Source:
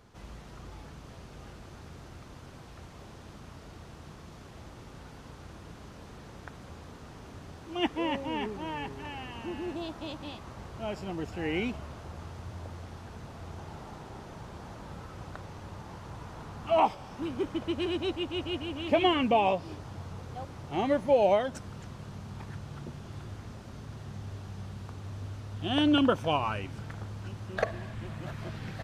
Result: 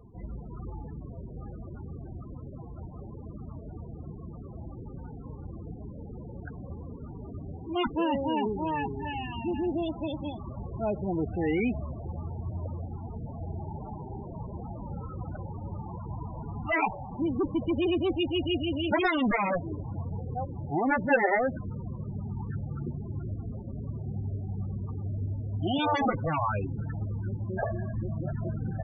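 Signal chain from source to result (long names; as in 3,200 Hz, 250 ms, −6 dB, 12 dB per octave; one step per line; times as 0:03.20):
harmonic generator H 3 −13 dB, 6 −24 dB, 7 −8 dB, 8 −19 dB, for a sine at −12 dBFS
spectral peaks only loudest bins 16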